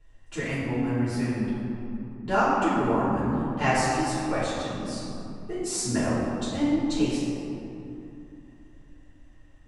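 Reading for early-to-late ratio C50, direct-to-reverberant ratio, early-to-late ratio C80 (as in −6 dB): −2.5 dB, −12.5 dB, −0.5 dB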